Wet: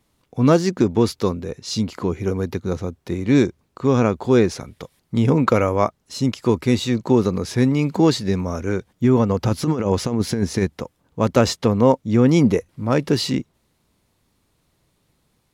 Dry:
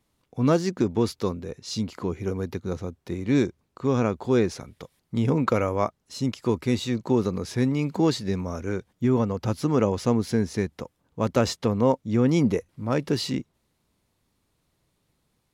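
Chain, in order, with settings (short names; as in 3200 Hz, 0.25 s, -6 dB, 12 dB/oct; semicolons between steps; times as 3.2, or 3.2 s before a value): 9.29–10.68 negative-ratio compressor -24 dBFS, ratio -0.5; gain +6 dB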